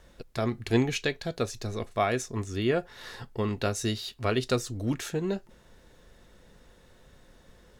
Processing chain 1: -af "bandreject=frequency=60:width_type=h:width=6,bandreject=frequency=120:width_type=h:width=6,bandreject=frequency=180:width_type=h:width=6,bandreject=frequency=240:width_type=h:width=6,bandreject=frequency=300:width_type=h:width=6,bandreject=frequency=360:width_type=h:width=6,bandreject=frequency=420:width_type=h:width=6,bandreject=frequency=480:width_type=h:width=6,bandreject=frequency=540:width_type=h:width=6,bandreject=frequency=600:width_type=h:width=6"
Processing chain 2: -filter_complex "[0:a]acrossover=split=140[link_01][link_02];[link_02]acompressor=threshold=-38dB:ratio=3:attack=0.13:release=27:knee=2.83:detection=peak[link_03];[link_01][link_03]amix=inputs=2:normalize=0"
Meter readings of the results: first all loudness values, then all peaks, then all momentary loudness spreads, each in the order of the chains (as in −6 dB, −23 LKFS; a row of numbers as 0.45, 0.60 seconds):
−31.0, −38.0 LKFS; −13.0, −22.5 dBFS; 8, 7 LU